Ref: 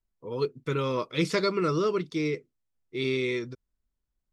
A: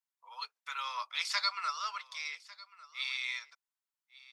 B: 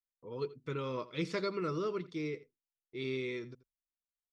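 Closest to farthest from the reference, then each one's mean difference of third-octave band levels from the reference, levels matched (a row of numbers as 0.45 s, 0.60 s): B, A; 1.5 dB, 14.5 dB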